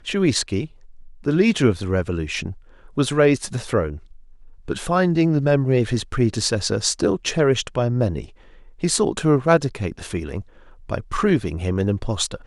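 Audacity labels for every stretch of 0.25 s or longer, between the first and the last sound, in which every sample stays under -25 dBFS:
0.650000	1.260000	silence
2.510000	2.980000	silence
3.940000	4.680000	silence
8.240000	8.830000	silence
10.410000	10.900000	silence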